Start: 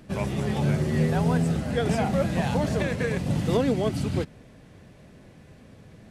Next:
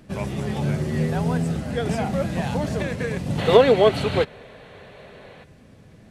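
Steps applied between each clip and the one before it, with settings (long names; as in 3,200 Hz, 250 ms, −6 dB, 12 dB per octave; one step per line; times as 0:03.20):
gain on a spectral selection 0:03.38–0:05.44, 370–4,500 Hz +12 dB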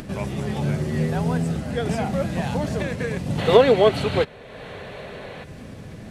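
upward compression, threshold −27 dBFS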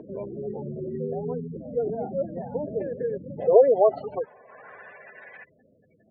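gate on every frequency bin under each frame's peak −15 dB strong
band-pass filter sweep 440 Hz → 1,800 Hz, 0:03.11–0:05.18
level +2.5 dB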